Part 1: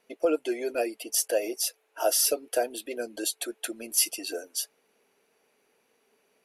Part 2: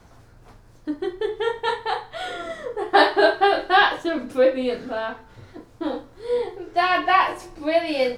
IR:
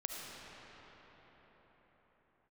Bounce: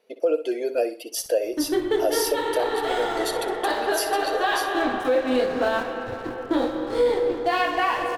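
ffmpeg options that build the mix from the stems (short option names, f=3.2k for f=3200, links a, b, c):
-filter_complex "[0:a]equalizer=f=500:t=o:w=1:g=11,equalizer=f=4k:t=o:w=1:g=6,equalizer=f=8k:t=o:w=1:g=-4,volume=-3dB,asplit=3[a][b][c];[b]volume=-13dB[d];[1:a]dynaudnorm=f=360:g=3:m=10.5dB,alimiter=limit=-6.5dB:level=0:latency=1:release=408,aeval=exprs='sgn(val(0))*max(abs(val(0))-0.0141,0)':c=same,adelay=700,volume=-4dB,asplit=2[e][f];[f]volume=-3dB[g];[c]apad=whole_len=391435[h];[e][h]sidechaincompress=threshold=-40dB:ratio=8:attack=16:release=305[i];[2:a]atrim=start_sample=2205[j];[g][j]afir=irnorm=-1:irlink=0[k];[d]aecho=0:1:62|124|186|248:1|0.28|0.0784|0.022[l];[a][i][k][l]amix=inputs=4:normalize=0,alimiter=limit=-12.5dB:level=0:latency=1:release=134"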